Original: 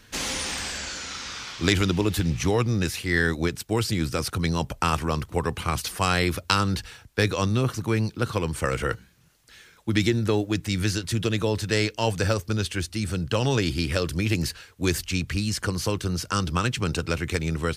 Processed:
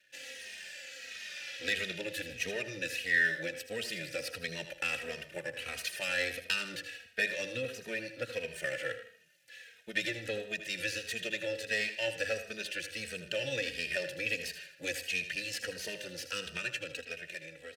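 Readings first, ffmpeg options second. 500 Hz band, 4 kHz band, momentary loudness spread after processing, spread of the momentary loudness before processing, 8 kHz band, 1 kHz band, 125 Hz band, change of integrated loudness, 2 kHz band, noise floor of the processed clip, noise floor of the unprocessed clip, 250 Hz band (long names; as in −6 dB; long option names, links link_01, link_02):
−10.5 dB, −8.0 dB, 10 LU, 6 LU, −11.5 dB, −20.5 dB, −26.0 dB, −9.5 dB, −3.0 dB, −57 dBFS, −54 dBFS, −20.5 dB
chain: -filter_complex "[0:a]aeval=exprs='if(lt(val(0),0),0.251*val(0),val(0))':channel_layout=same,asplit=3[link_01][link_02][link_03];[link_01]bandpass=frequency=530:width_type=q:width=8,volume=0dB[link_04];[link_02]bandpass=frequency=1840:width_type=q:width=8,volume=-6dB[link_05];[link_03]bandpass=frequency=2480:width_type=q:width=8,volume=-9dB[link_06];[link_04][link_05][link_06]amix=inputs=3:normalize=0,asplit=2[link_07][link_08];[link_08]acompressor=threshold=-51dB:ratio=6,volume=-1dB[link_09];[link_07][link_09]amix=inputs=2:normalize=0,equalizer=frequency=440:width=0.92:gain=-11,bandreject=frequency=50:width_type=h:width=6,bandreject=frequency=100:width_type=h:width=6,asplit=2[link_10][link_11];[link_11]aecho=0:1:79|158|237|316:0.282|0.116|0.0474|0.0194[link_12];[link_10][link_12]amix=inputs=2:normalize=0,dynaudnorm=framelen=130:gausssize=21:maxgain=10.5dB,aemphasis=mode=production:type=75fm,asplit=2[link_13][link_14];[link_14]adelay=110,highpass=300,lowpass=3400,asoftclip=type=hard:threshold=-20.5dB,volume=-14dB[link_15];[link_13][link_15]amix=inputs=2:normalize=0,asplit=2[link_16][link_17];[link_17]adelay=2.9,afreqshift=-1.5[link_18];[link_16][link_18]amix=inputs=2:normalize=1"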